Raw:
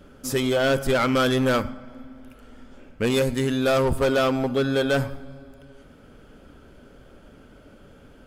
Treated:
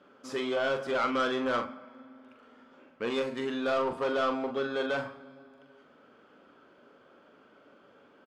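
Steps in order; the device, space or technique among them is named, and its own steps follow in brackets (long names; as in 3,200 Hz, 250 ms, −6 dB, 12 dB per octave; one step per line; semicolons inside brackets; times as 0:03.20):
intercom (band-pass filter 300–4,100 Hz; parametric band 1,100 Hz +6.5 dB 0.55 octaves; soft clipping −14.5 dBFS, distortion −17 dB; double-tracking delay 42 ms −7 dB)
level −7 dB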